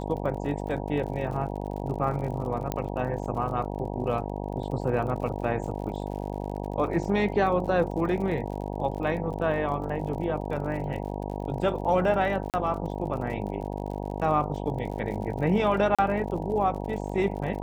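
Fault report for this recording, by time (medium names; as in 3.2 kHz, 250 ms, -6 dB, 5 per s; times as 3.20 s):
buzz 50 Hz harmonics 19 -33 dBFS
crackle 51 per s -37 dBFS
2.72 s: pop -14 dBFS
12.50–12.54 s: dropout 38 ms
15.95–15.99 s: dropout 36 ms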